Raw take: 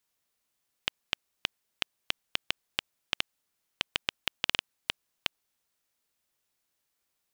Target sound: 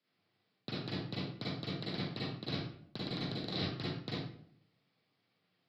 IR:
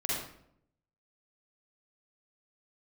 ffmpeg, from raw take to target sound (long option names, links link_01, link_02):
-filter_complex "[0:a]aeval=exprs='val(0)+0.5*0.02*sgn(val(0))':channel_layout=same,asetrate=56889,aresample=44100,equalizer=frequency=840:width=5.7:gain=-3.5,afreqshift=96,aresample=11025,asoftclip=type=tanh:threshold=-21.5dB,aresample=44100,agate=range=-45dB:threshold=-40dB:ratio=16:detection=peak,lowshelf=frequency=370:gain=11,areverse,acompressor=threshold=-45dB:ratio=6,areverse[link_01];[1:a]atrim=start_sample=2205,asetrate=48510,aresample=44100[link_02];[link_01][link_02]afir=irnorm=-1:irlink=0,volume=6.5dB"